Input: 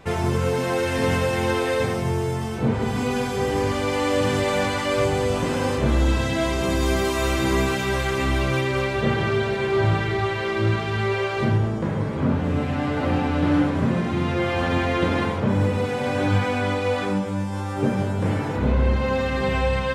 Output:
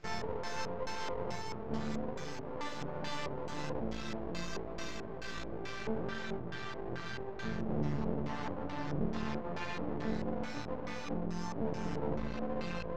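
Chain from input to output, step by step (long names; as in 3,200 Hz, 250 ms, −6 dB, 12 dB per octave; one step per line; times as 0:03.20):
flat-topped bell 7,200 Hz +12.5 dB
brickwall limiter −17 dBFS, peak gain reduction 9 dB
time stretch by overlap-add 0.65×, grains 47 ms
resonators tuned to a chord D3 minor, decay 0.52 s
auto-filter low-pass square 2.3 Hz 490–7,100 Hz
half-wave rectification
high-frequency loss of the air 230 metres
level +12 dB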